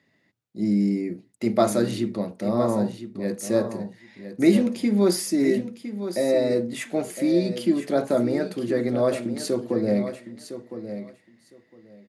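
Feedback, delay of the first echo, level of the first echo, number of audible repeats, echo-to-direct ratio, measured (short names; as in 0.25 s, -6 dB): 16%, 1.009 s, -11.0 dB, 2, -11.0 dB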